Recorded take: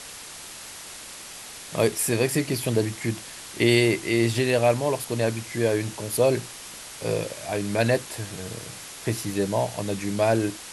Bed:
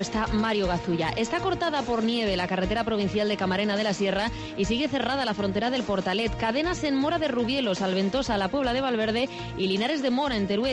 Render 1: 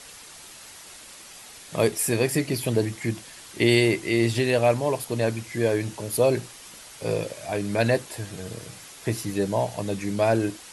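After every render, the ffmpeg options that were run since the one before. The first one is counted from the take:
-af "afftdn=nr=6:nf=-41"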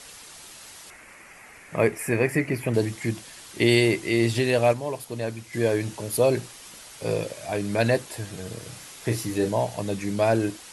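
-filter_complex "[0:a]asettb=1/sr,asplit=3[a][b][c];[a]atrim=end=0.904[d];[b]atrim=start=0.9:end=2.74,asetpts=PTS-STARTPTS,afade=t=in:d=0.004:c=qsin,afade=t=out:st=1.836:d=0.004:c=qsin,highshelf=f=2.8k:t=q:w=3:g=-8.5[e];[c]atrim=start=2.736[f];[d][e]acrossfade=d=0.004:c1=hsin:c2=qsin[g];[g][f]acrossfade=d=0.004:c1=qsin:c2=hsin,asettb=1/sr,asplit=3[h][i][j];[h]atrim=end=8.634[k];[i]atrim=start=8.63:end=9.51,asetpts=PTS-STARTPTS,afade=t=in:d=0.004:c=qsin,afade=t=out:st=0.876:d=0.004:c=qsin,asplit=2[l][m];[m]adelay=33,volume=-6dB[n];[l][n]amix=inputs=2:normalize=0,atrim=end_sample=38808[o];[j]atrim=start=9.506[p];[k][o]acrossfade=d=0.004:c1=hsin:c2=qsin[q];[q][p]acrossfade=d=0.004:c1=qsin:c2=hsin,asplit=3[r][s][t];[r]atrim=end=4.732[u];[s]atrim=start=4.728:end=5.532,asetpts=PTS-STARTPTS,volume=-5.5dB[v];[t]atrim=start=5.528[w];[u][v]acrossfade=d=0.004:c1=hsin:c2=hsin[x];[x][w]acrossfade=d=0.004:c1=hsin:c2=hsin"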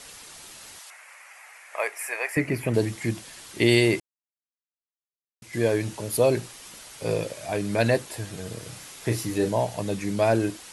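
-filter_complex "[0:a]asettb=1/sr,asplit=3[a][b][c];[a]atrim=end=0.794[d];[b]atrim=start=0.79:end=2.37,asetpts=PTS-STARTPTS,afade=t=in:d=0.004:c=qsin,afade=t=out:st=1.576:d=0.004:c=qsin,highpass=f=660:w=0.5412,highpass=f=660:w=1.3066[e];[c]atrim=start=2.366[f];[d][e]acrossfade=d=0.004:c1=hsin:c2=qsin[g];[g][f]acrossfade=d=0.004:c1=qsin:c2=hsin,asplit=3[h][i][j];[h]atrim=end=4,asetpts=PTS-STARTPTS,afade=t=out:st=3.996:d=0.004:c=hsin[k];[i]atrim=start=4:end=5.42,asetpts=PTS-STARTPTS,volume=0[l];[j]atrim=start=5.42,asetpts=PTS-STARTPTS,afade=t=in:d=0.004:c=hsin[m];[k][l][m]concat=n=3:v=0:a=1"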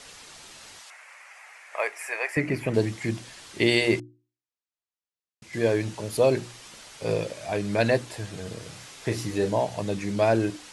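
-af "lowpass=7.5k,bandreject=f=60:t=h:w=6,bandreject=f=120:t=h:w=6,bandreject=f=180:t=h:w=6,bandreject=f=240:t=h:w=6,bandreject=f=300:t=h:w=6,bandreject=f=360:t=h:w=6"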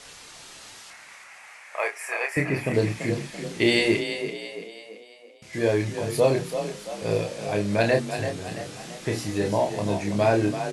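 -filter_complex "[0:a]asplit=2[a][b];[b]adelay=29,volume=-5dB[c];[a][c]amix=inputs=2:normalize=0,asplit=2[d][e];[e]asplit=5[f][g][h][i][j];[f]adelay=336,afreqshift=33,volume=-9dB[k];[g]adelay=672,afreqshift=66,volume=-15.6dB[l];[h]adelay=1008,afreqshift=99,volume=-22.1dB[m];[i]adelay=1344,afreqshift=132,volume=-28.7dB[n];[j]adelay=1680,afreqshift=165,volume=-35.2dB[o];[k][l][m][n][o]amix=inputs=5:normalize=0[p];[d][p]amix=inputs=2:normalize=0"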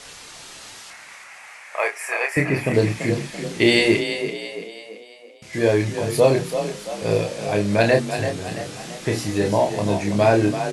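-af "volume=4.5dB"

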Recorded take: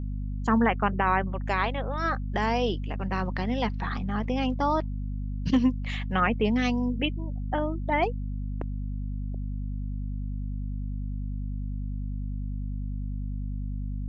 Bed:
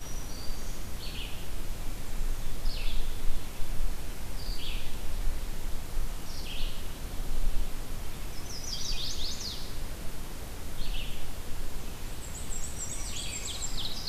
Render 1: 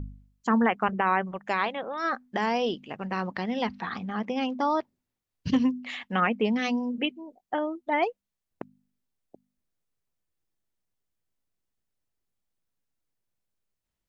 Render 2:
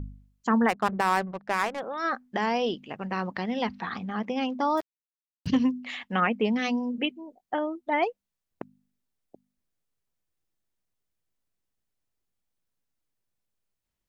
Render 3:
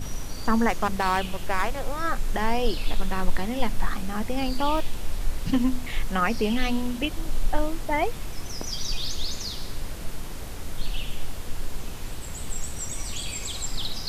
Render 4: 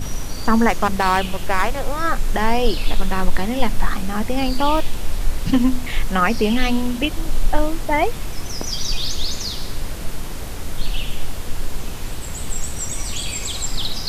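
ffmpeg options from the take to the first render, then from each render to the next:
-af "bandreject=f=50:t=h:w=4,bandreject=f=100:t=h:w=4,bandreject=f=150:t=h:w=4,bandreject=f=200:t=h:w=4,bandreject=f=250:t=h:w=4"
-filter_complex "[0:a]asplit=3[a][b][c];[a]afade=t=out:st=0.68:d=0.02[d];[b]adynamicsmooth=sensitivity=5:basefreq=530,afade=t=in:st=0.68:d=0.02,afade=t=out:st=1.79:d=0.02[e];[c]afade=t=in:st=1.79:d=0.02[f];[d][e][f]amix=inputs=3:normalize=0,asettb=1/sr,asplit=3[g][h][i];[g]atrim=end=4.774[j];[h]atrim=start=4.77:end=5.47,asetpts=PTS-STARTPTS,afade=t=in:d=0.004:c=qsin,afade=t=out:st=0.696:d=0.004:c=qsin,acrusher=bits=6:mix=0:aa=0.5[k];[i]atrim=start=5.466[l];[j][k]acrossfade=d=0.004:c1=hsin:c2=qsin[m];[m][l]acrossfade=d=0.004:c1=qsin:c2=hsin"
-filter_complex "[1:a]volume=3.5dB[a];[0:a][a]amix=inputs=2:normalize=0"
-af "volume=6.5dB,alimiter=limit=-2dB:level=0:latency=1"

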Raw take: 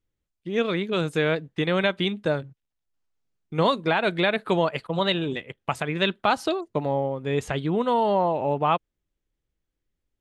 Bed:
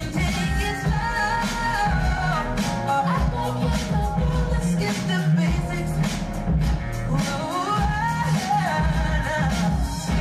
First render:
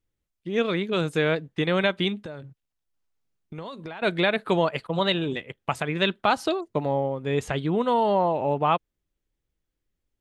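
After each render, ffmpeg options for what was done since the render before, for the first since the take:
-filter_complex "[0:a]asettb=1/sr,asplit=3[a][b][c];[a]atrim=end=2.214[d];[b]atrim=start=2.21:end=4.02,asetpts=PTS-STARTPTS,afade=t=in:d=0.004:c=qsin,afade=t=out:st=1.806:d=0.004:c=qsin,acompressor=threshold=-33dB:ratio=10:attack=3.2:release=140:knee=1:detection=peak[e];[c]atrim=start=4.016[f];[d][e]acrossfade=d=0.004:c1=hsin:c2=qsin[g];[g][f]acrossfade=d=0.004:c1=qsin:c2=hsin"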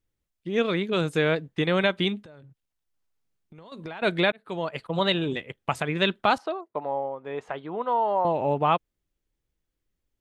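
-filter_complex "[0:a]asettb=1/sr,asplit=3[a][b][c];[a]atrim=end=2.214[d];[b]atrim=start=2.21:end=3.72,asetpts=PTS-STARTPTS,afade=t=in:d=0.004:c=qsin,afade=t=out:st=1.506:d=0.004:c=qsin,acompressor=threshold=-53dB:ratio=2:attack=3.2:release=140:knee=1:detection=peak[e];[c]atrim=start=3.716[f];[d][e]acrossfade=d=0.004:c1=hsin:c2=qsin[g];[g][f]acrossfade=d=0.004:c1=qsin:c2=hsin,asettb=1/sr,asplit=3[h][i][j];[h]atrim=end=6.384[k];[i]atrim=start=6.38:end=8.25,asetpts=PTS-STARTPTS,afade=t=in:d=0.004:c=qsin,afade=t=out:st=1.866:d=0.004:c=qsin,bandpass=f=900:t=q:w=1.2[l];[j]atrim=start=8.246[m];[k][l]acrossfade=d=0.004:c1=hsin:c2=qsin[n];[n][m]acrossfade=d=0.004:c1=qsin:c2=hsin,asplit=2[o][p];[o]atrim=end=4.32,asetpts=PTS-STARTPTS,afade=t=out:st=4.316:d=0.004:c=hsin[q];[p]atrim=start=4.32,asetpts=PTS-STARTPTS,afade=t=in:d=0.71[r];[q][r]concat=n=2:v=0:a=1"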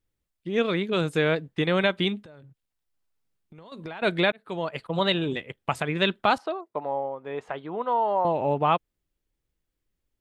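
-af "equalizer=f=6.2k:t=o:w=0.24:g=-2.5"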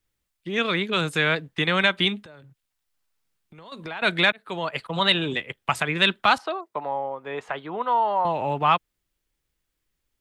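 -filter_complex "[0:a]acrossover=split=270|860[a][b][c];[b]alimiter=level_in=3dB:limit=-24dB:level=0:latency=1,volume=-3dB[d];[c]acontrast=75[e];[a][d][e]amix=inputs=3:normalize=0"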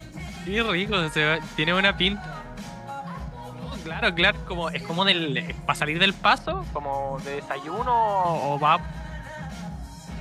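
-filter_complex "[1:a]volume=-13.5dB[a];[0:a][a]amix=inputs=2:normalize=0"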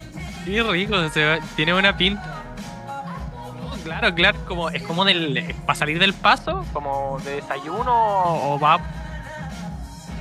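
-af "volume=3.5dB,alimiter=limit=-3dB:level=0:latency=1"

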